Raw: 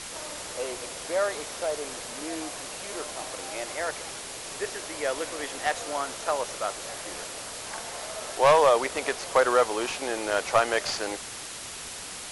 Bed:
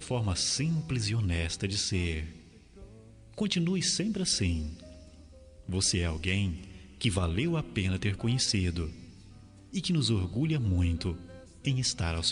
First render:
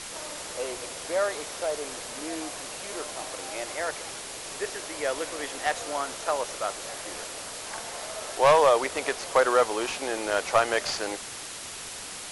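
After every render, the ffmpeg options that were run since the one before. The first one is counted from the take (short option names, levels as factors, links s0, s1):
-af "bandreject=f=60:t=h:w=4,bandreject=f=120:t=h:w=4,bandreject=f=180:t=h:w=4,bandreject=f=240:t=h:w=4"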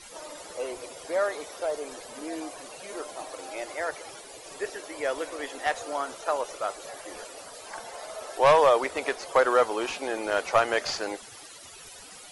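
-af "afftdn=nr=14:nf=-39"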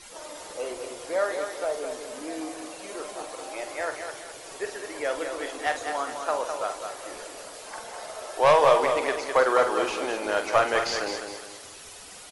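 -filter_complex "[0:a]asplit=2[s0][s1];[s1]adelay=47,volume=0.355[s2];[s0][s2]amix=inputs=2:normalize=0,aecho=1:1:206|412|618|824|1030:0.473|0.189|0.0757|0.0303|0.0121"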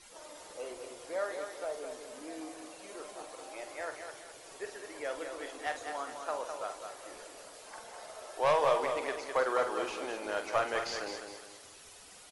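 -af "volume=0.355"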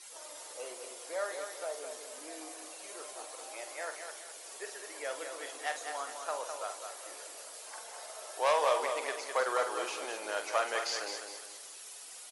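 -af "highpass=430,aemphasis=mode=production:type=cd"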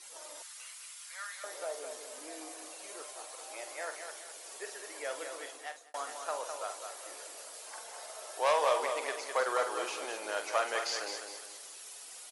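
-filter_complex "[0:a]asettb=1/sr,asplit=3[s0][s1][s2];[s0]atrim=end=0.424[s3];[s1]atrim=start=0.42:end=1.44,asetpts=PTS-STARTPTS,afade=t=in:d=0.004:c=qsin,afade=t=out:st=1.016:d=0.004:c=qsin,highpass=f=1300:w=0.5412,highpass=f=1300:w=1.3066[s4];[s2]atrim=start=1.436[s5];[s3][s4]acrossfade=d=0.004:c1=hsin:c2=qsin[s6];[s6][s5]acrossfade=d=0.004:c1=qsin:c2=hsin,asettb=1/sr,asplit=3[s7][s8][s9];[s7]atrim=end=3.024[s10];[s8]atrim=start=3.02:end=3.5,asetpts=PTS-STARTPTS,afade=t=in:d=0.004:c=qsin,afade=t=out:st=0.476:d=0.004:c=qsin,lowshelf=f=330:g=-10[s11];[s9]atrim=start=3.496[s12];[s10][s11]acrossfade=d=0.004:c1=hsin:c2=qsin[s13];[s13][s12]acrossfade=d=0.004:c1=qsin:c2=hsin,asplit=2[s14][s15];[s14]atrim=end=5.94,asetpts=PTS-STARTPTS,afade=t=out:st=5.35:d=0.59[s16];[s15]atrim=start=5.94,asetpts=PTS-STARTPTS,afade=t=in:d=0.004:c=hsin[s17];[s16][s17]concat=n=2:v=0:a=1"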